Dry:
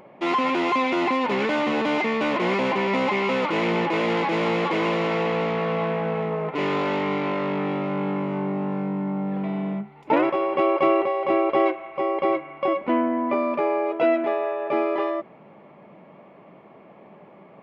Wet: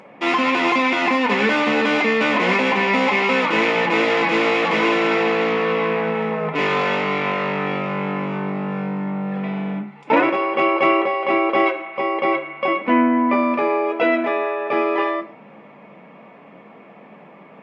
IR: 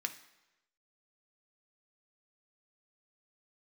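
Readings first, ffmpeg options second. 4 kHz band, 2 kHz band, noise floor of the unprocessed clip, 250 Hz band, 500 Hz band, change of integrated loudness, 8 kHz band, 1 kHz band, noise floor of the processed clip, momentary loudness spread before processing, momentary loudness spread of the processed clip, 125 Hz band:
+7.0 dB, +9.0 dB, -49 dBFS, +3.5 dB, +2.5 dB, +4.5 dB, no reading, +4.5 dB, -45 dBFS, 6 LU, 8 LU, +1.0 dB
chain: -filter_complex "[1:a]atrim=start_sample=2205,afade=t=out:st=0.2:d=0.01,atrim=end_sample=9261[s0];[0:a][s0]afir=irnorm=-1:irlink=0,volume=2.24" -ar 22050 -c:a libmp3lame -b:a 64k

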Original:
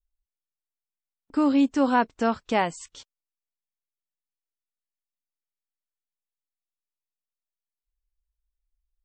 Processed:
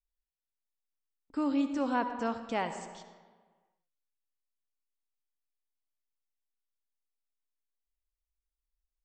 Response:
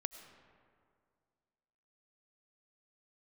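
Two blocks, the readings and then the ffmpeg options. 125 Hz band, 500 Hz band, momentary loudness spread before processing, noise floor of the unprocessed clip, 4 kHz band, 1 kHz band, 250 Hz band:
-8.5 dB, -8.5 dB, 9 LU, under -85 dBFS, -8.5 dB, -8.5 dB, -8.5 dB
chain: -filter_complex "[1:a]atrim=start_sample=2205,asetrate=66150,aresample=44100[s0];[0:a][s0]afir=irnorm=-1:irlink=0,volume=0.668"

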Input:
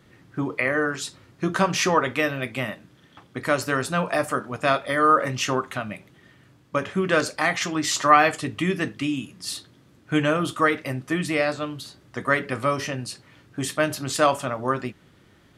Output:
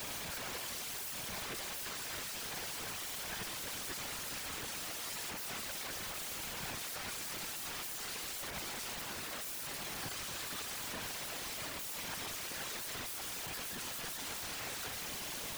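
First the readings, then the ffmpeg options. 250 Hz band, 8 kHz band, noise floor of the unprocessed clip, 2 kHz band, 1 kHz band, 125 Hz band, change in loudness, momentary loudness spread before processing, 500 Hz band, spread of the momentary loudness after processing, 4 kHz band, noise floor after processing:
-24.5 dB, -6.0 dB, -56 dBFS, -17.5 dB, -22.5 dB, -22.0 dB, -15.5 dB, 13 LU, -25.0 dB, 0 LU, -8.0 dB, -43 dBFS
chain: -filter_complex "[0:a]aeval=exprs='val(0)+0.5*0.0501*sgn(val(0))':c=same,aeval=exprs='val(0)+0.00251*sin(2*PI*1000*n/s)':c=same,equalizer=f=800:t=o:w=0.33:g=9,equalizer=f=1600:t=o:w=0.33:g=12,equalizer=f=2500:t=o:w=0.33:g=-8,equalizer=f=5000:t=o:w=0.33:g=-9,equalizer=f=8000:t=o:w=0.33:g=-7,areverse,acompressor=threshold=0.0447:ratio=16,areverse,alimiter=level_in=1.78:limit=0.0631:level=0:latency=1:release=18,volume=0.562,acrossover=split=6100[s0][s1];[s1]acompressor=threshold=0.00398:ratio=4:attack=1:release=60[s2];[s0][s2]amix=inputs=2:normalize=0,aeval=exprs='(mod(100*val(0)+1,2)-1)/100':c=same,afftfilt=real='hypot(re,im)*cos(2*PI*random(0))':imag='hypot(re,im)*sin(2*PI*random(1))':win_size=512:overlap=0.75,volume=2.66"

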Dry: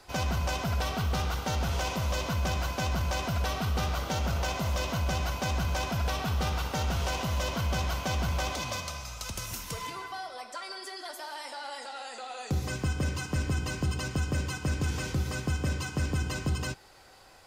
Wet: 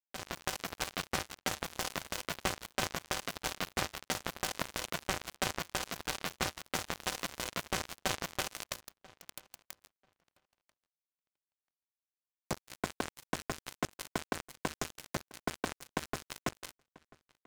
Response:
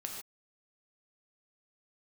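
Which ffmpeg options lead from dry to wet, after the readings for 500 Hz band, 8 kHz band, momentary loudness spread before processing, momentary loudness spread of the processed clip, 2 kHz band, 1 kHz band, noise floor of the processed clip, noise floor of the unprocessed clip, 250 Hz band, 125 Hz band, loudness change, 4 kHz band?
-5.5 dB, -2.0 dB, 9 LU, 7 LU, -4.0 dB, -6.0 dB, under -85 dBFS, -47 dBFS, -8.0 dB, -18.0 dB, -6.0 dB, -3.5 dB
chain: -filter_complex "[0:a]highpass=f=200:p=1,bandreject=f=5000:w=19,acrusher=bits=3:mix=0:aa=0.5,asplit=2[s0][s1];[s1]adelay=989,lowpass=f=3500:p=1,volume=0.0708,asplit=2[s2][s3];[s3]adelay=989,lowpass=f=3500:p=1,volume=0.17[s4];[s2][s4]amix=inputs=2:normalize=0[s5];[s0][s5]amix=inputs=2:normalize=0,dynaudnorm=f=180:g=3:m=5.01,volume=0.422"

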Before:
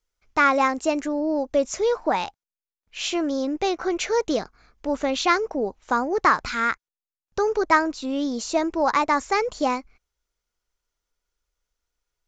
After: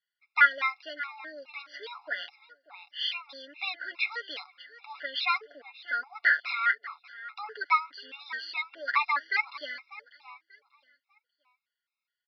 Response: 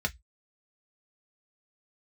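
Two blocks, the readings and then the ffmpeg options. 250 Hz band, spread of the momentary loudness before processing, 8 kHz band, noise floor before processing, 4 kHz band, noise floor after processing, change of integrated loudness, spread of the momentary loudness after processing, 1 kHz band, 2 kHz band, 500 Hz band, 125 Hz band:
under -30 dB, 9 LU, under -30 dB, under -85 dBFS, -2.5 dB, under -85 dBFS, -6.0 dB, 19 LU, -8.5 dB, 0.0 dB, -24.0 dB, under -40 dB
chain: -filter_complex "[0:a]aecho=1:1:7:0.56,aresample=11025,aresample=44100,highpass=f=1900:t=q:w=1.7,highshelf=f=3800:g=-6,asplit=2[s0][s1];[s1]aecho=0:1:592|1184|1776:0.141|0.0396|0.0111[s2];[s0][s2]amix=inputs=2:normalize=0,afftfilt=real='re*gt(sin(2*PI*2.4*pts/sr)*(1-2*mod(floor(b*sr/1024/700),2)),0)':imag='im*gt(sin(2*PI*2.4*pts/sr)*(1-2*mod(floor(b*sr/1024/700),2)),0)':win_size=1024:overlap=0.75"

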